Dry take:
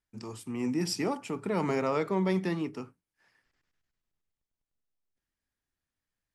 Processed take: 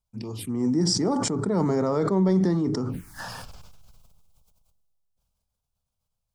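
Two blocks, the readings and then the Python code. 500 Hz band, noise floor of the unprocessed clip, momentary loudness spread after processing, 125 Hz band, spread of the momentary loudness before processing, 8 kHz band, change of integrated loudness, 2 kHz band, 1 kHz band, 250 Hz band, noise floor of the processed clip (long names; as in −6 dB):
+5.5 dB, below −85 dBFS, 16 LU, +9.5 dB, 14 LU, +10.5 dB, +6.5 dB, −1.0 dB, +3.5 dB, +8.0 dB, −82 dBFS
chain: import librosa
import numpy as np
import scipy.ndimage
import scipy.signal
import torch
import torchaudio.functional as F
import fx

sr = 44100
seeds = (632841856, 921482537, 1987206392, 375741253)

y = fx.low_shelf(x, sr, hz=370.0, db=7.0)
y = fx.env_phaser(y, sr, low_hz=310.0, high_hz=2600.0, full_db=-31.0)
y = fx.sustainer(y, sr, db_per_s=20.0)
y = F.gain(torch.from_numpy(y), 2.0).numpy()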